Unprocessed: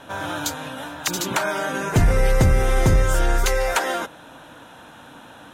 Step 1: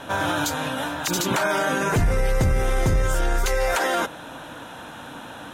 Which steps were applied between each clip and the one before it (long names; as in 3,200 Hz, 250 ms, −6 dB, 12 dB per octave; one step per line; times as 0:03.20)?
brickwall limiter −19 dBFS, peak gain reduction 10 dB
level +5.5 dB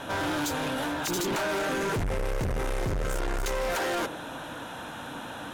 dynamic equaliser 370 Hz, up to +7 dB, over −42 dBFS, Q 1.9
soft clipping −26.5 dBFS, distortion −7 dB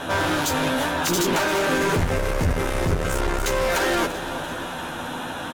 double-tracking delay 12 ms −5.5 dB
repeating echo 341 ms, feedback 59%, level −14 dB
level +6.5 dB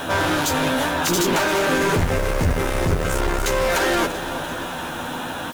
background noise white −49 dBFS
one half of a high-frequency compander encoder only
level +2 dB